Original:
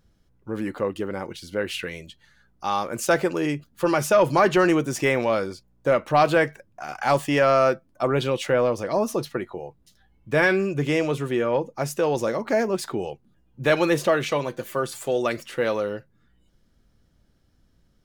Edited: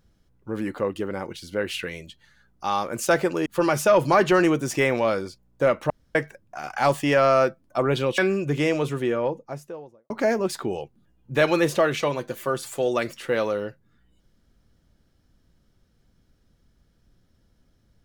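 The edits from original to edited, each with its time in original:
0:03.46–0:03.71: remove
0:06.15–0:06.40: fill with room tone
0:08.43–0:10.47: remove
0:11.18–0:12.39: fade out and dull

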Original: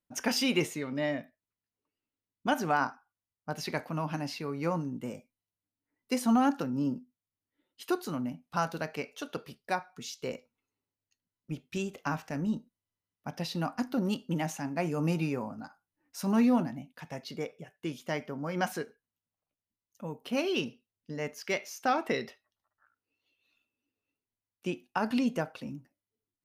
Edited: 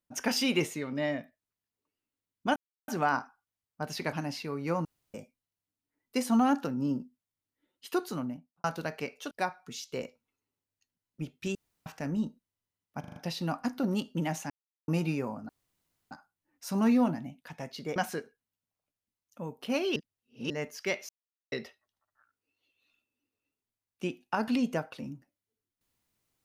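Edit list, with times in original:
0:02.56: splice in silence 0.32 s
0:03.81–0:04.09: remove
0:04.81–0:05.10: fill with room tone
0:08.10–0:08.60: fade out and dull
0:09.27–0:09.61: remove
0:11.85–0:12.16: fill with room tone
0:13.30: stutter 0.04 s, 5 plays
0:14.64–0:15.02: silence
0:15.63: splice in room tone 0.62 s
0:17.48–0:18.59: remove
0:20.59–0:21.13: reverse
0:21.72–0:22.15: silence

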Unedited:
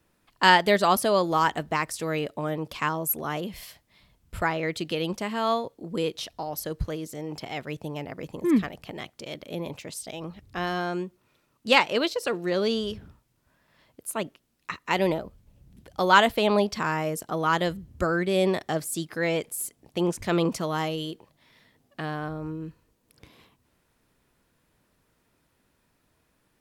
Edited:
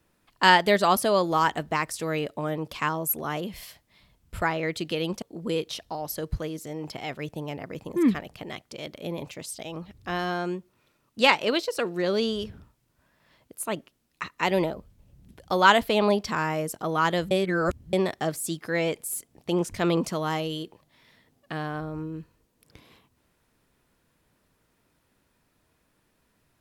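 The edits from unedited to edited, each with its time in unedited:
0:05.22–0:05.70: remove
0:17.79–0:18.41: reverse

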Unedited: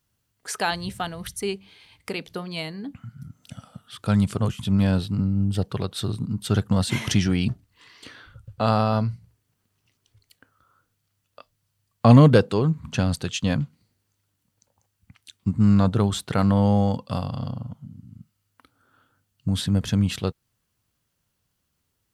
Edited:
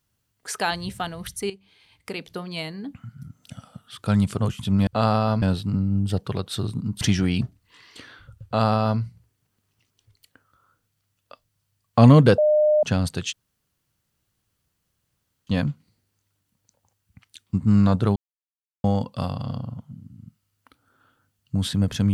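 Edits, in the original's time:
0:01.50–0:02.72: fade in equal-power, from −12.5 dB
0:06.46–0:07.08: remove
0:08.52–0:09.07: duplicate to 0:04.87
0:12.45–0:12.90: beep over 606 Hz −14.5 dBFS
0:13.40: splice in room tone 2.14 s
0:16.09–0:16.77: silence

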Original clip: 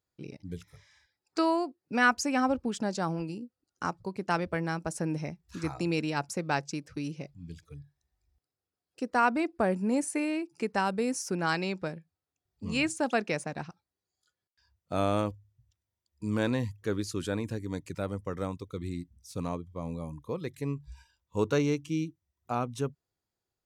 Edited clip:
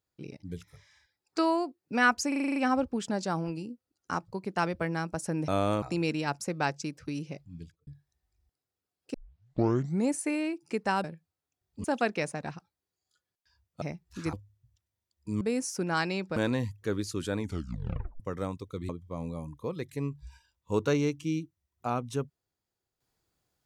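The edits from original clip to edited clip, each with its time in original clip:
0:02.28: stutter 0.04 s, 8 plays
0:05.20–0:05.71: swap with 0:14.94–0:15.28
0:07.44–0:07.76: fade out and dull
0:09.03: tape start 0.93 s
0:10.93–0:11.88: move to 0:16.36
0:12.68–0:12.96: remove
0:17.39: tape stop 0.81 s
0:18.89–0:19.54: remove

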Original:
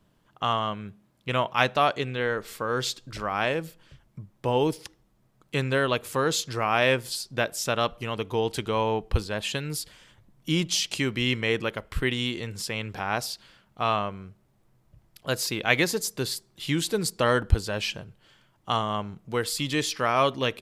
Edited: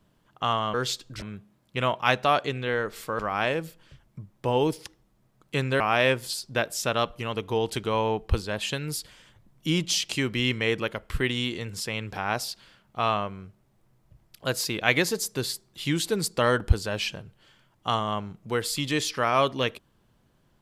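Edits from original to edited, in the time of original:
0:02.71–0:03.19: move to 0:00.74
0:05.80–0:06.62: remove

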